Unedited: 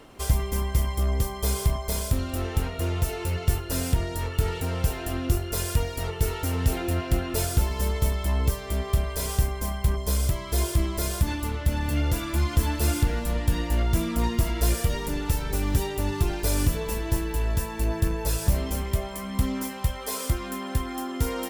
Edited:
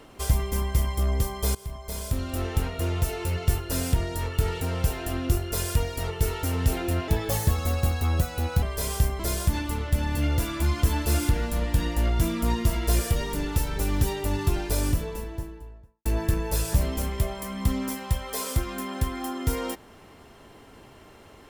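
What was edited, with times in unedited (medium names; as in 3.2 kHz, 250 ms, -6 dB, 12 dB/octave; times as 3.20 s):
1.55–2.40 s: fade in, from -19.5 dB
7.08–9.01 s: speed 125%
9.58–10.93 s: delete
16.26–17.79 s: studio fade out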